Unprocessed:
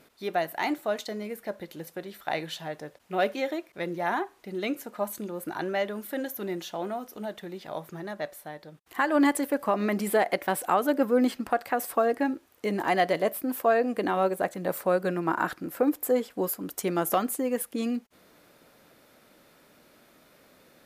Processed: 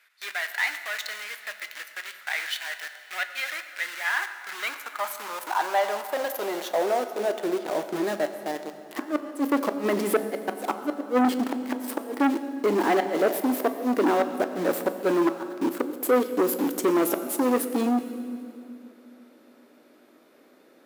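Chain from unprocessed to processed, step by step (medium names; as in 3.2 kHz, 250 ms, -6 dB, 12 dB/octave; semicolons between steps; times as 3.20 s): treble shelf 2.8 kHz -5.5 dB; in parallel at -4 dB: companded quantiser 2-bit; on the sum: inverted gate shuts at -12 dBFS, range -26 dB; high-pass sweep 1.8 kHz -> 310 Hz, 4.03–7.82 s; on a send at -8 dB: reverberation RT60 2.7 s, pre-delay 6 ms; on the sum: transformer saturation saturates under 870 Hz; trim -1 dB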